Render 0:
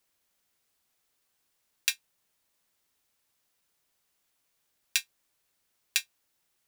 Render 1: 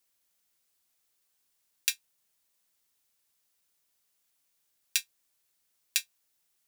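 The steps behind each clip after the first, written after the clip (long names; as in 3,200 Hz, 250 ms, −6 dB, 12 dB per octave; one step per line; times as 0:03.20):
high-shelf EQ 3,600 Hz +7.5 dB
level −5.5 dB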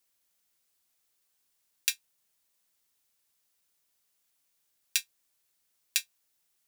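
no processing that can be heard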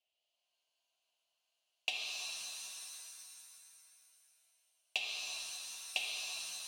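stylus tracing distortion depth 0.18 ms
pair of resonant band-passes 1,400 Hz, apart 2.1 octaves
reverb with rising layers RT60 2.8 s, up +7 semitones, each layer −2 dB, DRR −1 dB
level +4 dB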